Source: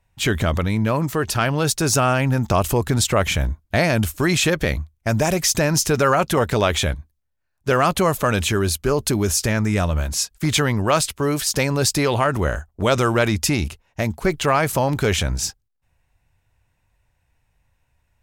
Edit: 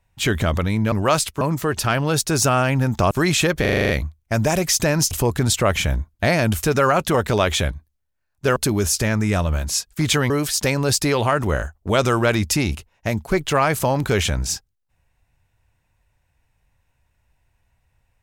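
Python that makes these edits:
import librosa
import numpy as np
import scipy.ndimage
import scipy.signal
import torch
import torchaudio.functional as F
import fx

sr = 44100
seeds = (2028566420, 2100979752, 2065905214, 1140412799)

y = fx.edit(x, sr, fx.move(start_s=2.62, length_s=1.52, to_s=5.86),
    fx.stutter(start_s=4.64, slice_s=0.04, count=8),
    fx.cut(start_s=7.79, length_s=1.21),
    fx.move(start_s=10.74, length_s=0.49, to_s=0.92), tone=tone)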